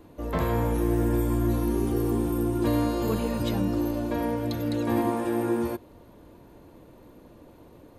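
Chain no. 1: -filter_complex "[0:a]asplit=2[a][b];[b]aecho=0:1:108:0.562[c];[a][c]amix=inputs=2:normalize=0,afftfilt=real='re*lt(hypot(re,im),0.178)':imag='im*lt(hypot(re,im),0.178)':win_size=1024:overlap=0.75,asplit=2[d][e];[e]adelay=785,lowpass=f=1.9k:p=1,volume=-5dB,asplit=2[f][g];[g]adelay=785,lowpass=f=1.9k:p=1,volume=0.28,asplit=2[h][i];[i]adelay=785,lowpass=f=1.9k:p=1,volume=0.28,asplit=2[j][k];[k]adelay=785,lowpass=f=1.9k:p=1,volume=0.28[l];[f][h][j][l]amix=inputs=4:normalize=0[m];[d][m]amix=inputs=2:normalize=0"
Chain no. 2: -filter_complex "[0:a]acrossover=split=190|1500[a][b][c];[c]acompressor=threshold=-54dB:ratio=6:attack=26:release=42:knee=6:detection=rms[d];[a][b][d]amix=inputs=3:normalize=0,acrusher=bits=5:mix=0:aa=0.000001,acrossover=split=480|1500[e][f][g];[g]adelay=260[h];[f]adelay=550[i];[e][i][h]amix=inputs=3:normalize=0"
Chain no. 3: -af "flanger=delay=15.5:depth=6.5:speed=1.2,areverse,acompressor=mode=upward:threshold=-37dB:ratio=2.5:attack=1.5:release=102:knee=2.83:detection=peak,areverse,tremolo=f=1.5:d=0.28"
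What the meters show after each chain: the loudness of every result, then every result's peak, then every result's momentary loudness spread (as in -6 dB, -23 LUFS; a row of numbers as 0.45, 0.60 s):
-34.0, -28.0, -31.0 LUFS; -20.0, -13.0, -16.5 dBFS; 15, 8, 20 LU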